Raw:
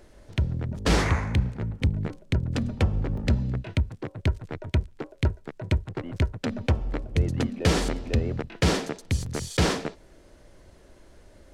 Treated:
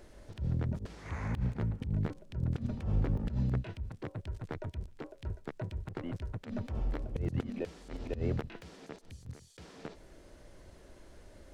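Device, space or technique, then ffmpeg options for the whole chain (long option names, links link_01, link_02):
de-esser from a sidechain: -filter_complex "[0:a]asplit=2[link_01][link_02];[link_02]highpass=frequency=4900:width=0.5412,highpass=frequency=4900:width=1.3066,apad=whole_len=508498[link_03];[link_01][link_03]sidechaincompress=threshold=-58dB:ratio=20:attack=0.77:release=55,volume=-2dB"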